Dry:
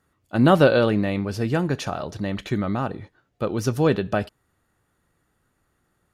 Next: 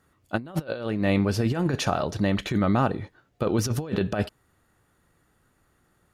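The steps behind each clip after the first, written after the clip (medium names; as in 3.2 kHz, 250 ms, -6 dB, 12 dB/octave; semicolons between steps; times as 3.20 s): compressor with a negative ratio -24 dBFS, ratio -0.5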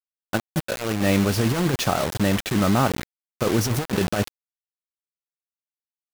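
bit crusher 5-bit; trim +2.5 dB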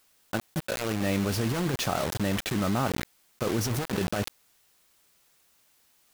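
level flattener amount 50%; trim -8 dB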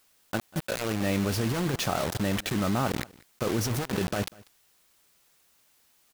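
delay 193 ms -23 dB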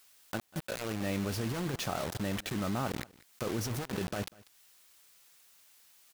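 tape noise reduction on one side only encoder only; trim -6.5 dB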